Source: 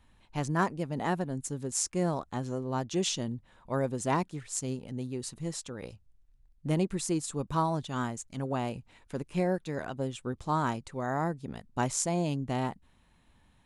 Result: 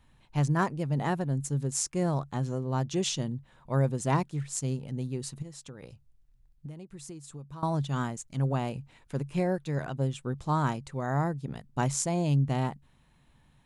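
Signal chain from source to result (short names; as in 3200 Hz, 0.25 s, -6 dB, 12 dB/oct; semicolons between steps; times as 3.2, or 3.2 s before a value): bell 140 Hz +12.5 dB 0.21 oct; 5.42–7.63 compressor 16:1, threshold -40 dBFS, peak gain reduction 20.5 dB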